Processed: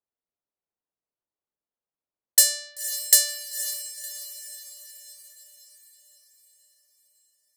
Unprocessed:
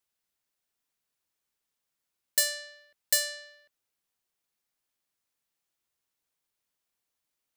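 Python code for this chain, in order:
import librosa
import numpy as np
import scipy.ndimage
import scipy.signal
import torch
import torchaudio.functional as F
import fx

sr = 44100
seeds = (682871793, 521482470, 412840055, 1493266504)

y = fx.bass_treble(x, sr, bass_db=-6, treble_db=13)
y = fx.env_lowpass(y, sr, base_hz=790.0, full_db=-20.0)
y = fx.echo_diffused(y, sr, ms=524, feedback_pct=53, wet_db=-11)
y = F.gain(torch.from_numpy(y), -1.0).numpy()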